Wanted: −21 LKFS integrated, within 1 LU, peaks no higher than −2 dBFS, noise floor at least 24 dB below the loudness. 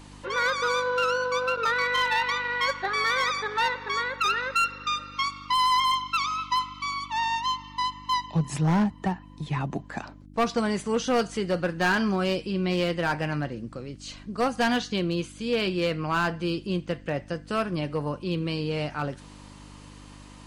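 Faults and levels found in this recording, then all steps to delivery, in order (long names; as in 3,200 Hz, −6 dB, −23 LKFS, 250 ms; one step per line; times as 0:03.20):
share of clipped samples 1.1%; peaks flattened at −18.0 dBFS; mains hum 50 Hz; hum harmonics up to 300 Hz; level of the hum −47 dBFS; integrated loudness −26.5 LKFS; sample peak −18.0 dBFS; target loudness −21.0 LKFS
→ clipped peaks rebuilt −18 dBFS
hum removal 50 Hz, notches 6
level +5.5 dB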